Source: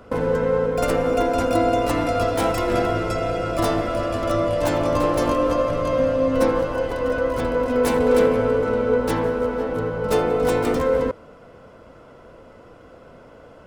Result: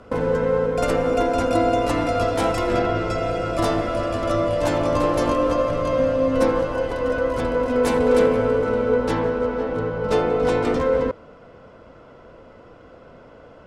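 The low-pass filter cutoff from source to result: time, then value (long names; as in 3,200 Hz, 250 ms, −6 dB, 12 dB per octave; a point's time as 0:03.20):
0:02.70 9,600 Hz
0:02.84 4,500 Hz
0:03.29 9,900 Hz
0:08.80 9,900 Hz
0:09.22 5,900 Hz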